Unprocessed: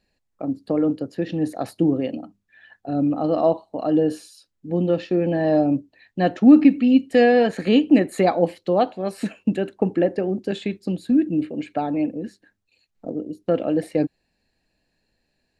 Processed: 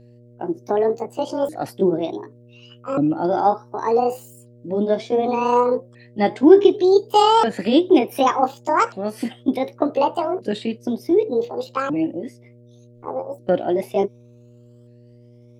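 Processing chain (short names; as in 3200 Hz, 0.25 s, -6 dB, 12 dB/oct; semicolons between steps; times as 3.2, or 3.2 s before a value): repeated pitch sweeps +11 st, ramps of 1.487 s; buzz 120 Hz, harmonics 5, -50 dBFS -5 dB/oct; gain +2 dB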